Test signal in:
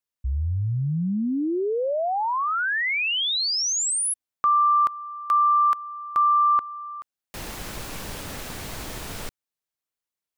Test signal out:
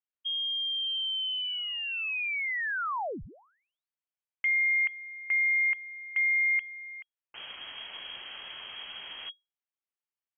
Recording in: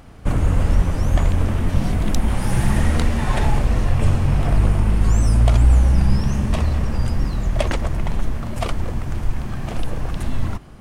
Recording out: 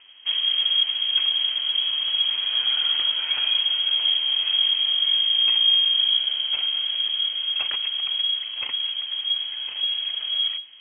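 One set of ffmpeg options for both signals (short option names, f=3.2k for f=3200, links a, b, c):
-filter_complex "[0:a]acrossover=split=320|630|2300[a][b][c][d];[b]asoftclip=type=tanh:threshold=-32.5dB[e];[a][e][c][d]amix=inputs=4:normalize=0,lowpass=f=2.8k:t=q:w=0.5098,lowpass=f=2.8k:t=q:w=0.6013,lowpass=f=2.8k:t=q:w=0.9,lowpass=f=2.8k:t=q:w=2.563,afreqshift=-3300,volume=-7dB"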